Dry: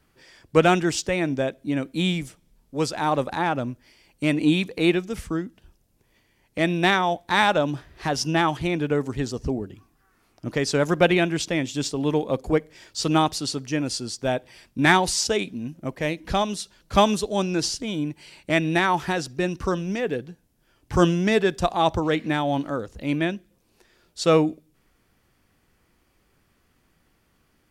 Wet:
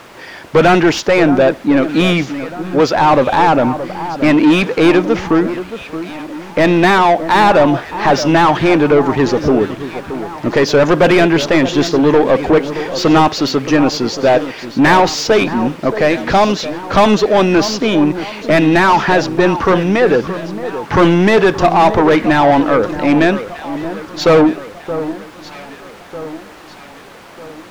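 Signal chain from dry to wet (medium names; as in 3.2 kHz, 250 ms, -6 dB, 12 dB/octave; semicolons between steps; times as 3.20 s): steep low-pass 7 kHz 96 dB/octave; treble shelf 5.4 kHz -6 dB; added noise pink -56 dBFS; overdrive pedal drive 30 dB, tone 1.3 kHz, clips at -2 dBFS; on a send: echo whose repeats swap between lows and highs 624 ms, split 1.5 kHz, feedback 67%, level -11.5 dB; on the sum: trim +2 dB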